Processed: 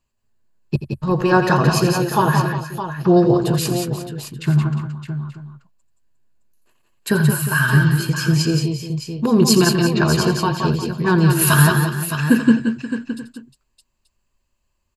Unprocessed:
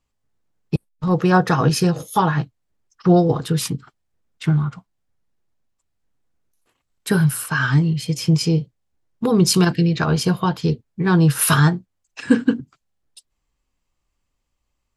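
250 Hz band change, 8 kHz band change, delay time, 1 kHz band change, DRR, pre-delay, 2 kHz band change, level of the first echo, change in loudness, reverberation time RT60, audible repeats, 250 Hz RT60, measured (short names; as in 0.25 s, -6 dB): +2.0 dB, +2.0 dB, 85 ms, +2.0 dB, none, none, +4.5 dB, -12.0 dB, +1.5 dB, none, 5, none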